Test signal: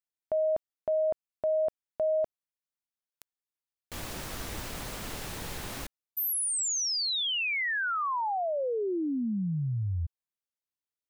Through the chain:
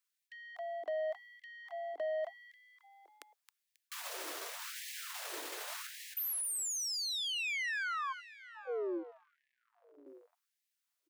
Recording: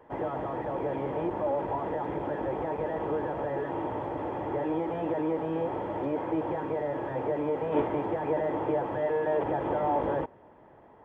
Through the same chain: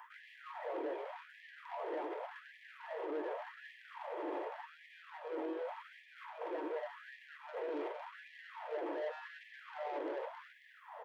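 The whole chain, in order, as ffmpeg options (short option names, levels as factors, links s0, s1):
-filter_complex "[0:a]acrossover=split=550|1800[s0][s1][s2];[s0]acompressor=threshold=0.0282:ratio=2.5[s3];[s1]acompressor=threshold=0.0112:ratio=6[s4];[s2]acompressor=threshold=0.0126:ratio=8[s5];[s3][s4][s5]amix=inputs=3:normalize=0,acrossover=split=310[s6][s7];[s7]asoftclip=type=tanh:threshold=0.02[s8];[s6][s8]amix=inputs=2:normalize=0,asplit=5[s9][s10][s11][s12][s13];[s10]adelay=270,afreqshift=55,volume=0.251[s14];[s11]adelay=540,afreqshift=110,volume=0.104[s15];[s12]adelay=810,afreqshift=165,volume=0.0422[s16];[s13]adelay=1080,afreqshift=220,volume=0.0174[s17];[s9][s14][s15][s16][s17]amix=inputs=5:normalize=0,areverse,acompressor=threshold=0.00891:ratio=12:attack=0.2:release=171:knee=6:detection=peak,areverse,bandreject=f=810:w=12,afftfilt=real='re*gte(b*sr/1024,280*pow(1700/280,0.5+0.5*sin(2*PI*0.87*pts/sr)))':imag='im*gte(b*sr/1024,280*pow(1700/280,0.5+0.5*sin(2*PI*0.87*pts/sr)))':win_size=1024:overlap=0.75,volume=2.51"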